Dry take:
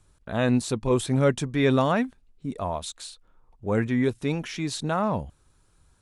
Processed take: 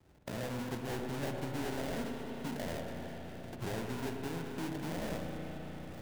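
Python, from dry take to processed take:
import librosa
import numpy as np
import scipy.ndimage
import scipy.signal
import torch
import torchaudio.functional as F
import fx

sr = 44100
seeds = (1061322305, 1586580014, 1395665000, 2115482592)

y = fx.wiener(x, sr, points=25)
y = fx.recorder_agc(y, sr, target_db=-17.0, rise_db_per_s=31.0, max_gain_db=30)
y = scipy.signal.sosfilt(scipy.signal.butter(2, 80.0, 'highpass', fs=sr, output='sos'), y)
y = fx.low_shelf(y, sr, hz=160.0, db=-5.5)
y = fx.hum_notches(y, sr, base_hz=50, count=5)
y = fx.sample_hold(y, sr, seeds[0], rate_hz=1200.0, jitter_pct=20)
y = 10.0 ** (-28.5 / 20.0) * np.tanh(y / 10.0 ** (-28.5 / 20.0))
y = fx.echo_alternate(y, sr, ms=102, hz=880.0, feedback_pct=73, wet_db=-9.5)
y = fx.rev_spring(y, sr, rt60_s=3.7, pass_ms=(34, 59), chirp_ms=20, drr_db=4.5)
y = fx.band_squash(y, sr, depth_pct=40)
y = y * librosa.db_to_amplitude(-7.5)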